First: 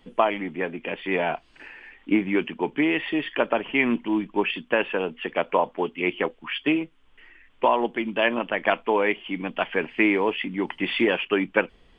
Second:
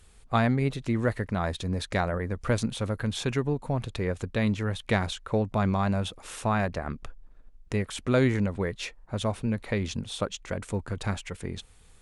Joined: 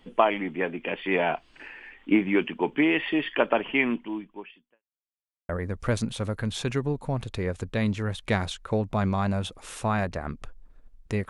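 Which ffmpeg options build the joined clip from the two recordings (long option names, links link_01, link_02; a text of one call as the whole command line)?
ffmpeg -i cue0.wav -i cue1.wav -filter_complex "[0:a]apad=whole_dur=11.29,atrim=end=11.29,asplit=2[link_01][link_02];[link_01]atrim=end=4.83,asetpts=PTS-STARTPTS,afade=type=out:start_time=3.68:duration=1.15:curve=qua[link_03];[link_02]atrim=start=4.83:end=5.49,asetpts=PTS-STARTPTS,volume=0[link_04];[1:a]atrim=start=2.1:end=7.9,asetpts=PTS-STARTPTS,afade=type=in:duration=0.004:curve=hsin[link_05];[link_03][link_04][link_05]concat=n=3:v=0:a=1" out.wav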